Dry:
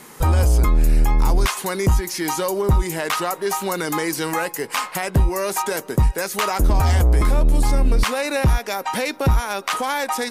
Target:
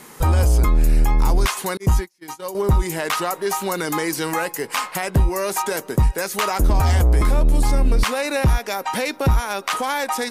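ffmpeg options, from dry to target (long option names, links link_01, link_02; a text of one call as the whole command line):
ffmpeg -i in.wav -filter_complex "[0:a]asettb=1/sr,asplit=3[link_01][link_02][link_03];[link_01]atrim=end=1.774[link_04];[link_02]atrim=start=1.77:end=2.55,asetpts=PTS-STARTPTS,afade=type=in:duration=0.004:curve=qsin,afade=type=out:start_time=0.776:duration=0.004:curve=qsin,agate=range=-39dB:threshold=-20dB:ratio=16:detection=peak[link_05];[link_03]atrim=start=2.546[link_06];[link_04][link_05]acrossfade=duration=0.004:curve1=hsin:curve2=qsin[link_07];[link_07][link_06]acrossfade=duration=0.004:curve1=qsin:curve2=hsin" out.wav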